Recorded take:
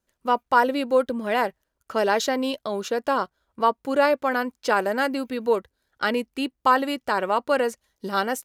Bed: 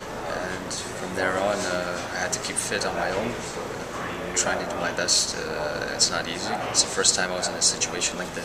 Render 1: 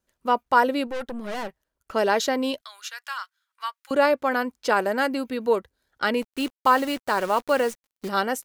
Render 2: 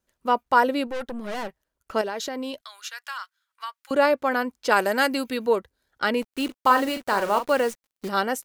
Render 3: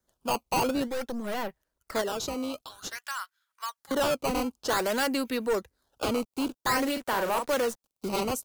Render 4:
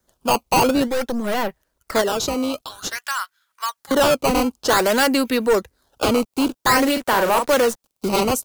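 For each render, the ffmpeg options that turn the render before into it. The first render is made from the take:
-filter_complex "[0:a]asettb=1/sr,asplit=3[a][b][c];[a]atrim=end=0.874[d];[b]atrim=start=0.87:end=1.93,asetpts=PTS-STARTPTS,afade=t=in:d=0.004:c=qsin,afade=t=out:st=1.056:d=0.004:c=qsin,aeval=exprs='(tanh(25.1*val(0)+0.65)-tanh(0.65))/25.1':c=same[e];[c]atrim=start=1.926[f];[d][e]acrossfade=d=0.004:c1=hsin:c2=qsin[g];[g][f]acrossfade=d=0.004:c1=qsin:c2=hsin,asettb=1/sr,asplit=3[h][i][j];[h]atrim=end=2.614[k];[i]atrim=start=2.61:end=3.91,asetpts=PTS-STARTPTS,afade=t=in:d=0.004:c=qsin,afade=t=out:st=1.296:d=0.004:c=qsin,highpass=f=1.4k:w=0.5412,highpass=f=1.4k:w=1.3066[l];[j]atrim=start=3.906[m];[k][l]acrossfade=d=0.004:c1=hsin:c2=qsin[n];[n][m]acrossfade=d=0.004:c1=qsin:c2=hsin,asplit=3[o][p][q];[o]afade=t=out:st=6.21:d=0.02[r];[p]acrusher=bits=7:dc=4:mix=0:aa=0.000001,afade=t=in:st=6.21:d=0.02,afade=t=out:st=8.08:d=0.02[s];[q]afade=t=in:st=8.08:d=0.02[t];[r][s][t]amix=inputs=3:normalize=0"
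-filter_complex "[0:a]asettb=1/sr,asplit=3[a][b][c];[a]atrim=end=2.014[d];[b]atrim=start=2.01:end=3.83,asetpts=PTS-STARTPTS,afade=t=in:d=0.004:c=qsin,afade=t=out:st=1.816:d=0.004:c=qsin,acompressor=threshold=-28dB:ratio=4:attack=3.2:release=140:knee=1:detection=peak[e];[c]atrim=start=3.826[f];[d][e]acrossfade=d=0.004:c1=hsin:c2=qsin[g];[g][f]acrossfade=d=0.004:c1=qsin:c2=hsin,asettb=1/sr,asplit=3[h][i][j];[h]atrim=end=4.714[k];[i]atrim=start=4.71:end=5.46,asetpts=PTS-STARTPTS,afade=t=in:d=0.004:c=qsin,afade=t=out:st=0.746:d=0.004:c=qsin,highshelf=f=2.1k:g=8.5[l];[j]atrim=start=5.456[m];[k][l]acrossfade=d=0.004:c1=hsin:c2=qsin[n];[n][m]acrossfade=d=0.004:c1=qsin:c2=hsin,asettb=1/sr,asplit=3[o][p][q];[o]atrim=end=6.454[r];[p]atrim=start=6.45:end=7.52,asetpts=PTS-STARTPTS,afade=t=in:d=0.004:c=qsin,afade=t=out:st=1.066:d=0.004:c=qsin,asplit=2[s][t];[t]adelay=40,volume=-8.5dB[u];[s][u]amix=inputs=2:normalize=0,atrim=end_sample=47187[v];[q]atrim=start=7.516[w];[r][v]acrossfade=d=0.004:c1=hsin:c2=qsin[x];[x][w]acrossfade=d=0.004:c1=qsin:c2=hsin"
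-filter_complex "[0:a]acrossover=split=140|500|3100[a][b][c][d];[c]acrusher=samples=14:mix=1:aa=0.000001:lfo=1:lforange=22.4:lforate=0.52[e];[a][b][e][d]amix=inputs=4:normalize=0,asoftclip=type=tanh:threshold=-22dB"
-af "volume=10dB"

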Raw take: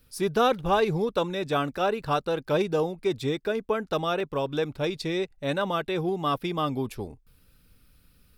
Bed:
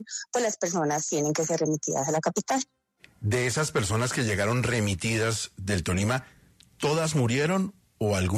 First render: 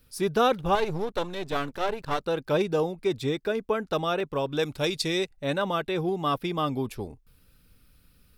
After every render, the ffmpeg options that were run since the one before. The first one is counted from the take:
-filter_complex "[0:a]asettb=1/sr,asplit=3[a][b][c];[a]atrim=end=0.754[d];[b]atrim=start=0.75:end=2.23,asetpts=PTS-STARTPTS,afade=t=in:d=0.004:c=qsin,afade=t=out:st=1.476:d=0.004:c=qsin,aeval=exprs='if(lt(val(0),0),0.251*val(0),val(0))':c=same[e];[c]atrim=start=2.226[f];[d][e]acrossfade=d=0.004:c1=hsin:c2=qsin[g];[g][f]acrossfade=d=0.004:c1=qsin:c2=hsin,asettb=1/sr,asplit=3[h][i][j];[h]atrim=end=4.594[k];[i]atrim=start=4.59:end=5.3,asetpts=PTS-STARTPTS,afade=t=in:d=0.004:c=qsin,afade=t=out:st=0.706:d=0.004:c=qsin,equalizer=f=9.7k:w=0.3:g=11[l];[j]atrim=start=5.296[m];[k][l]acrossfade=d=0.004:c1=hsin:c2=qsin[n];[n][m]acrossfade=d=0.004:c1=qsin:c2=hsin"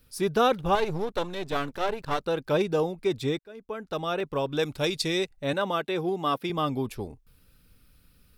-filter_complex "[0:a]asettb=1/sr,asplit=3[a][b][c];[a]atrim=end=5.534[d];[b]atrim=start=5.53:end=6.5,asetpts=PTS-STARTPTS,afade=t=in:d=0.004:c=qsin,afade=t=out:st=0.966:d=0.004:c=qsin,highpass=180[e];[c]atrim=start=6.496[f];[d][e]acrossfade=d=0.004:c1=hsin:c2=qsin[g];[g][f]acrossfade=d=0.004:c1=qsin:c2=hsin,asplit=2[h][i];[h]atrim=end=3.39,asetpts=PTS-STARTPTS,afade=t=out:st=3.386:d=0.004:c=hsin[j];[i]atrim=start=3.39,asetpts=PTS-STARTPTS,afade=t=in:d=0.92[k];[j][k]concat=n=2:v=0:a=1"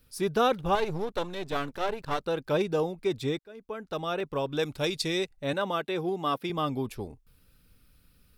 -af "volume=-2dB"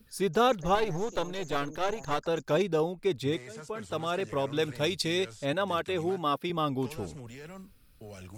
-filter_complex "[1:a]volume=-20.5dB[a];[0:a][a]amix=inputs=2:normalize=0"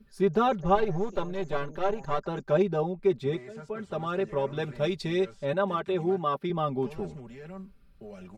-af "lowpass=f=1.3k:p=1,aecho=1:1:5.1:0.78"

